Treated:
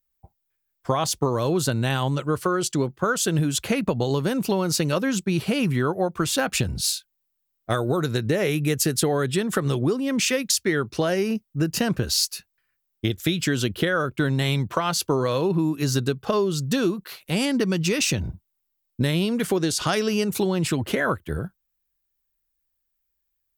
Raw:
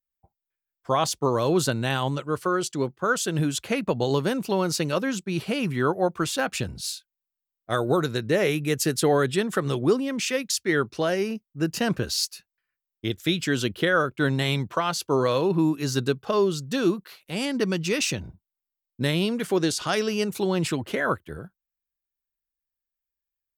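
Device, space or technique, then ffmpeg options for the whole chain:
ASMR close-microphone chain: -af "lowshelf=f=150:g=7.5,acompressor=threshold=-26dB:ratio=6,highshelf=f=9.3k:g=5.5,volume=6.5dB"

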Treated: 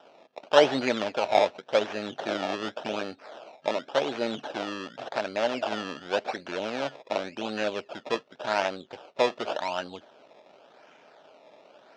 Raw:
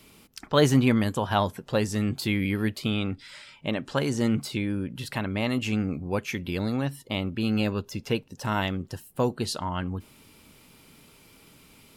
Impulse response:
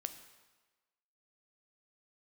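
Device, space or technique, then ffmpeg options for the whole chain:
circuit-bent sampling toy: -af "acrusher=samples=20:mix=1:aa=0.000001:lfo=1:lforange=20:lforate=0.89,highpass=540,equalizer=f=620:t=q:w=4:g=7,equalizer=f=1.1k:t=q:w=4:g=-7,equalizer=f=2k:t=q:w=4:g=-7,equalizer=f=4.4k:t=q:w=4:g=-4,lowpass=f=4.8k:w=0.5412,lowpass=f=4.8k:w=1.3066,volume=4dB"

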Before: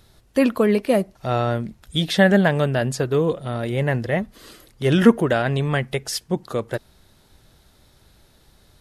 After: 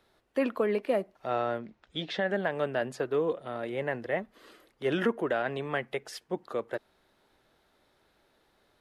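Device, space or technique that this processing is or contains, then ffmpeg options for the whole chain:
DJ mixer with the lows and highs turned down: -filter_complex "[0:a]acrossover=split=260 3100:gain=0.141 1 0.251[a][b][c];[a][b][c]amix=inputs=3:normalize=0,alimiter=limit=-10.5dB:level=0:latency=1:release=192,asettb=1/sr,asplit=3[d][e][f];[d]atrim=end=1.584[g];[e]atrim=start=1.58:end=2.29,asetpts=PTS-STARTPTS,afade=t=in:d=0.004:c=qsin,afade=t=out:st=0.706:d=0.004:c=qsin,lowpass=f=6.3k:w=0.5412,lowpass=f=6.3k:w=1.3066[h];[f]atrim=start=2.286[i];[g][h]acrossfade=d=0.004:c1=hsin:c2=qsin[j];[j][i]acrossfade=d=0.004:c1=qsin:c2=hsin,volume=-6.5dB"

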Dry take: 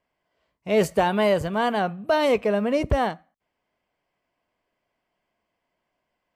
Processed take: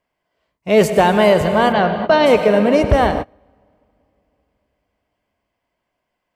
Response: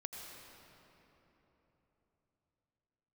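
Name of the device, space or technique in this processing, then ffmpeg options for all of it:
keyed gated reverb: -filter_complex "[0:a]asplit=3[a][b][c];[1:a]atrim=start_sample=2205[d];[b][d]afir=irnorm=-1:irlink=0[e];[c]apad=whole_len=280412[f];[e][f]sidechaingate=range=-30dB:threshold=-38dB:ratio=16:detection=peak,volume=4dB[g];[a][g]amix=inputs=2:normalize=0,asplit=3[h][i][j];[h]afade=t=out:st=1.72:d=0.02[k];[i]lowpass=f=5.5k:w=0.5412,lowpass=f=5.5k:w=1.3066,afade=t=in:st=1.72:d=0.02,afade=t=out:st=2.25:d=0.02[l];[j]afade=t=in:st=2.25:d=0.02[m];[k][l][m]amix=inputs=3:normalize=0,volume=2dB"

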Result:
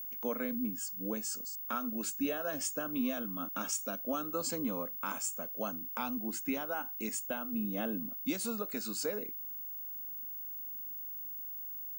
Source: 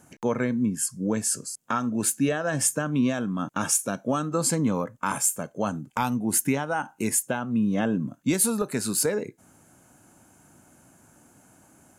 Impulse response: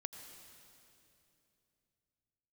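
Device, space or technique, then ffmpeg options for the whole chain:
old television with a line whistle: -filter_complex "[0:a]asettb=1/sr,asplit=3[a][b][c];[a]atrim=end=5.944[d];[b]atrim=start=5.94:end=6.52,asetpts=PTS-STARTPTS,afade=t=in:d=0.004:c=qsin,afade=t=out:st=0.576:d=0.004:c=qsin,highshelf=f=5.7k:g=-5.5[e];[c]atrim=start=6.516[f];[d][e]acrossfade=d=0.004:c1=hsin:c2=qsin[g];[g][f]acrossfade=d=0.004:c1=qsin:c2=hsin,highpass=f=230:w=0.5412,highpass=f=230:w=1.3066,equalizer=f=380:t=q:w=4:g=-8,equalizer=f=910:t=q:w=4:g=-7,equalizer=f=1.8k:t=q:w=4:g=-7,lowpass=f=7.1k:w=0.5412,lowpass=f=7.1k:w=1.3066,aeval=exprs='val(0)+0.0251*sin(2*PI*15625*n/s)':c=same,volume=-7.5dB"

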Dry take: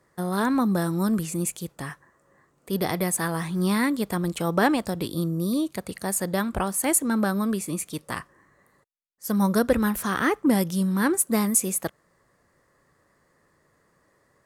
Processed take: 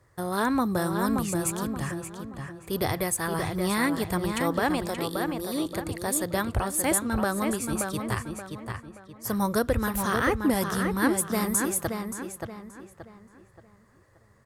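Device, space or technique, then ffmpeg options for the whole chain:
car stereo with a boomy subwoofer: -filter_complex "[0:a]asettb=1/sr,asplit=3[a][b][c];[a]atrim=end=4.834[d];[b]atrim=start=4.83:end=5.66,asetpts=PTS-STARTPTS,afade=t=in:d=0.004:c=qsin,afade=t=out:st=0.826:d=0.004:c=qsin,highpass=290[e];[c]atrim=start=5.656[f];[d][e]acrossfade=d=0.004:c1=hsin:c2=qsin[g];[g][f]acrossfade=d=0.004:c1=qsin:c2=hsin,lowshelf=f=140:t=q:w=3:g=8,alimiter=limit=-14dB:level=0:latency=1:release=259,asplit=2[h][i];[i]adelay=577,lowpass=f=3.8k:p=1,volume=-5dB,asplit=2[j][k];[k]adelay=577,lowpass=f=3.8k:p=1,volume=0.37,asplit=2[l][m];[m]adelay=577,lowpass=f=3.8k:p=1,volume=0.37,asplit=2[n][o];[o]adelay=577,lowpass=f=3.8k:p=1,volume=0.37,asplit=2[p][q];[q]adelay=577,lowpass=f=3.8k:p=1,volume=0.37[r];[h][j][l][n][p][r]amix=inputs=6:normalize=0"

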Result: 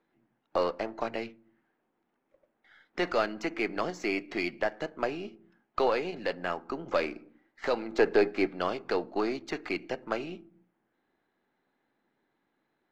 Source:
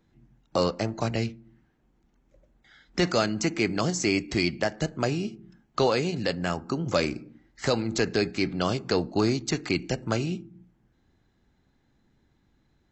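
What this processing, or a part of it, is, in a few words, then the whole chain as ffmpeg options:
crystal radio: -filter_complex "[0:a]asettb=1/sr,asplit=3[a][b][c];[a]atrim=end=7.984[d];[b]atrim=start=7.98:end=8.47,asetpts=PTS-STARTPTS,afade=t=in:d=0.004:c=qsin,afade=t=out:st=0.486:d=0.004:c=qsin,equalizer=f=490:w=0.46:g=7.5[e];[c]atrim=start=8.466[f];[d][e]acrossfade=d=0.004:c1=hsin:c2=qsin[g];[g][f]acrossfade=d=0.004:c1=qsin:c2=hsin,highpass=390,lowpass=2.5k,aeval=exprs='if(lt(val(0),0),0.708*val(0),val(0))':c=same"

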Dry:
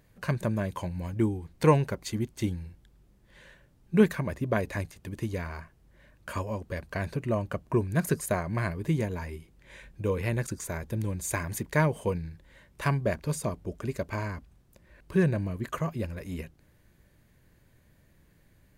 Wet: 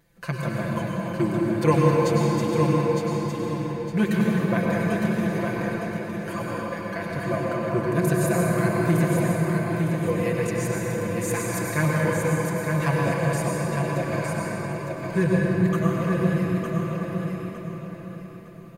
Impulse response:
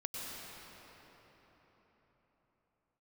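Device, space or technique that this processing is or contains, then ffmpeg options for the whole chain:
cathedral: -filter_complex "[0:a]lowshelf=f=190:g=-5,aecho=1:1:5.9:0.91,asettb=1/sr,asplit=3[a][b][c];[a]atrim=end=8.454[d];[b]atrim=start=8.45:end=8.99,asetpts=PTS-STARTPTS,afade=t=in:d=0.004:c=qsin,afade=t=out:st=0.536:d=0.004:c=qsin,highshelf=f=8.2k:g=10[e];[c]atrim=start=8.986[f];[d][e]acrossfade=d=0.004:c1=hsin:c2=qsin[g];[g][f]acrossfade=d=0.004:c1=qsin:c2=hsin,aecho=1:1:909|1818|2727|3636:0.562|0.169|0.0506|0.0152[h];[1:a]atrim=start_sample=2205[i];[h][i]afir=irnorm=-1:irlink=0,volume=2dB"

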